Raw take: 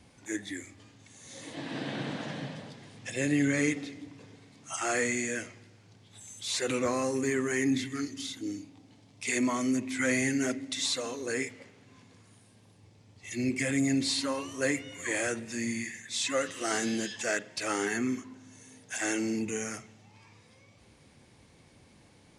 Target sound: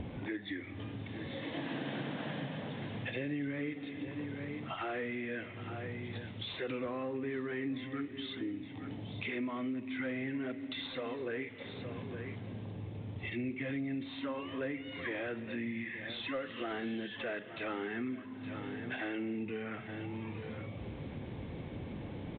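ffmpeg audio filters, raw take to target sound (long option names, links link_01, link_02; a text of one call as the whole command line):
ffmpeg -i in.wav -filter_complex "[0:a]acrossover=split=640[link_01][link_02];[link_01]acompressor=mode=upward:threshold=-41dB:ratio=2.5[link_03];[link_02]asoftclip=type=tanh:threshold=-31.5dB[link_04];[link_03][link_04]amix=inputs=2:normalize=0,aecho=1:1:866:0.112,acompressor=threshold=-46dB:ratio=5,volume=9dB" -ar 8000 -c:a pcm_alaw out.wav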